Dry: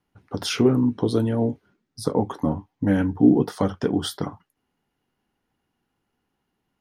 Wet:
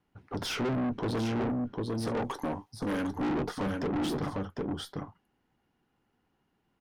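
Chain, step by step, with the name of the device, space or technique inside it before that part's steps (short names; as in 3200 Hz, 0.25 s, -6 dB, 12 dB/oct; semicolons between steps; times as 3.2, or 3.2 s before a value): 2.07–3.17 tone controls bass -12 dB, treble +12 dB; echo 0.751 s -7.5 dB; tube preamp driven hard (tube stage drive 30 dB, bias 0.4; high shelf 5000 Hz -9 dB); gain +2 dB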